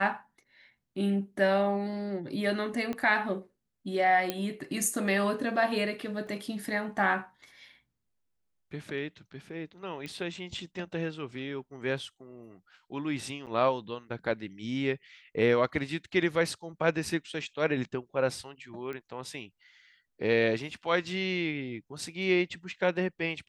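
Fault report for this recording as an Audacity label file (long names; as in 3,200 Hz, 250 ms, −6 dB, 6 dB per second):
2.930000	2.930000	click −21 dBFS
4.300000	4.300000	click −14 dBFS
6.270000	6.270000	drop-out 3 ms
10.060000	10.060000	click −25 dBFS
13.460000	13.470000	drop-out 8.2 ms
18.930000	18.930000	click −27 dBFS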